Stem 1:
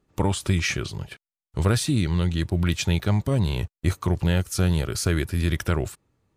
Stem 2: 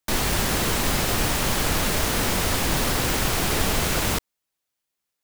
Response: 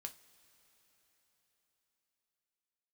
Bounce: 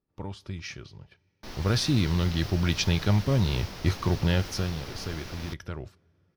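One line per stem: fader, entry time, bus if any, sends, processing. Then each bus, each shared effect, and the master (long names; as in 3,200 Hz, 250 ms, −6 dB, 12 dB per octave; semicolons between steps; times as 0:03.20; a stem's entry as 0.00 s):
0:01.32 −16.5 dB → 0:01.82 −4 dB → 0:04.42 −4 dB → 0:04.82 −14.5 dB, 0.00 s, send −5 dB, no processing
−17.0 dB, 1.35 s, no send, no processing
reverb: on, pre-delay 3 ms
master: high shelf with overshoot 6,500 Hz −6.5 dB, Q 3; one half of a high-frequency compander decoder only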